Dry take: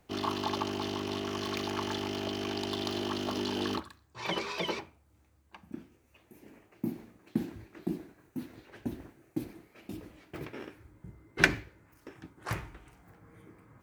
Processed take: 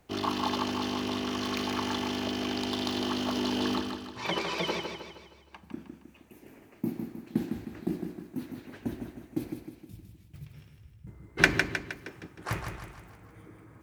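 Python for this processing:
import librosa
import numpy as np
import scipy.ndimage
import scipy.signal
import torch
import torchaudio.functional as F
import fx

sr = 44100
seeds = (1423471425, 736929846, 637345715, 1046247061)

y = fx.curve_eq(x, sr, hz=(150.0, 300.0, 1600.0, 3500.0, 11000.0), db=(0, -26, -21, -11, -6), at=(9.53, 11.07))
y = fx.echo_feedback(y, sr, ms=156, feedback_pct=48, wet_db=-6.0)
y = F.gain(torch.from_numpy(y), 2.0).numpy()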